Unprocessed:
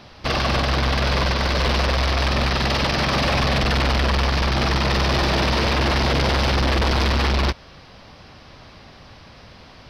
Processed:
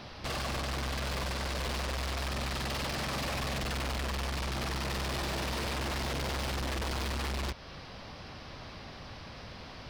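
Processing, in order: in parallel at +1 dB: compressor, threshold -30 dBFS, peak gain reduction 10.5 dB; on the sum: soft clip -25.5 dBFS, distortion -11 dB; gain -7.5 dB

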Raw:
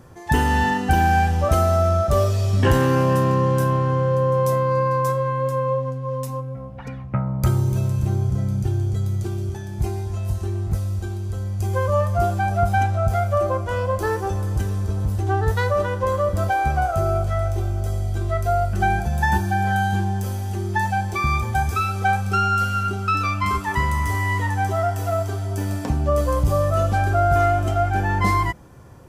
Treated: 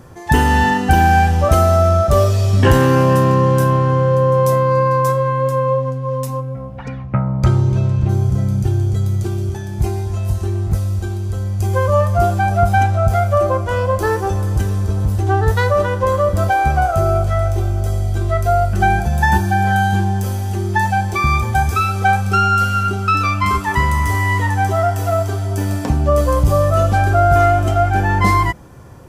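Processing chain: 6.82–8.08 LPF 7600 Hz -> 3600 Hz 12 dB/oct; gain +5.5 dB

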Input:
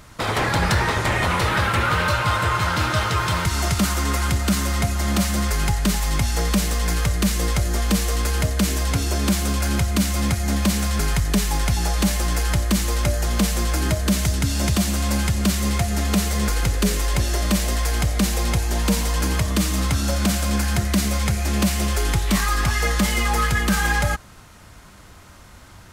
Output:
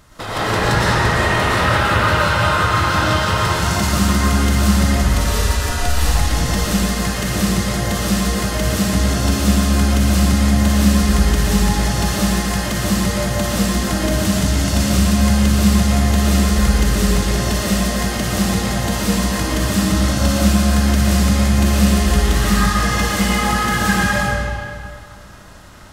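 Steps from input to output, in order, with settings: notch 2300 Hz, Q 11; 4.93–5.98 frequency shift -120 Hz; digital reverb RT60 2.2 s, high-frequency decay 0.8×, pre-delay 75 ms, DRR -8.5 dB; gain -4 dB

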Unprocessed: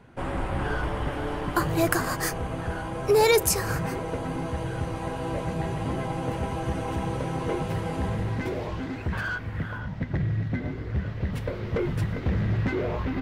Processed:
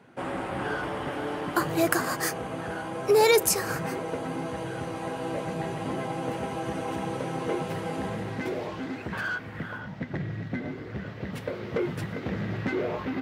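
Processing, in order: HPF 180 Hz 12 dB/oct; notch 1000 Hz, Q 26

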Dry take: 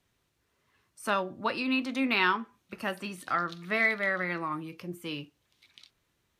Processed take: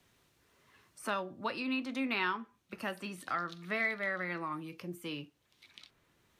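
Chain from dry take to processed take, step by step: three-band squash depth 40%; gain -6 dB

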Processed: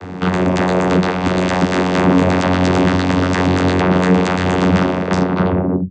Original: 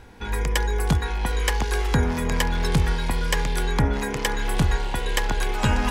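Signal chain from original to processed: tape stop at the end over 1.50 s; sine folder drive 16 dB, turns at -9.5 dBFS; vocoder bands 16, saw 91.2 Hz; gain +1 dB

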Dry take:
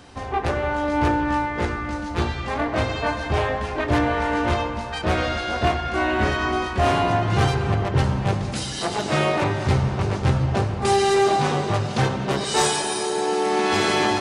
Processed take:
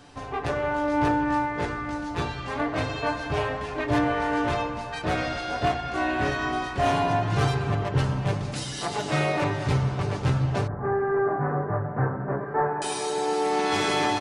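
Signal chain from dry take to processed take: 10.67–12.82 elliptic low-pass 1700 Hz, stop band 50 dB; comb 6.9 ms, depth 51%; gain -5 dB

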